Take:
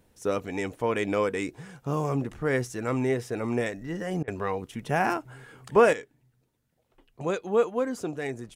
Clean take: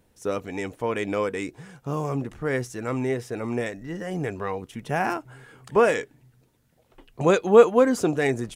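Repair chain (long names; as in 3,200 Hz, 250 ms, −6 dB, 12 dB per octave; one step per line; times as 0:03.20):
repair the gap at 0:04.23, 46 ms
level 0 dB, from 0:05.93 +9.5 dB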